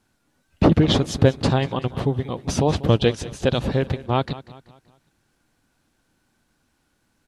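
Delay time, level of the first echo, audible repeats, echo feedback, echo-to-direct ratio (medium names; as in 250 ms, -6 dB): 191 ms, -17.0 dB, 3, 43%, -16.0 dB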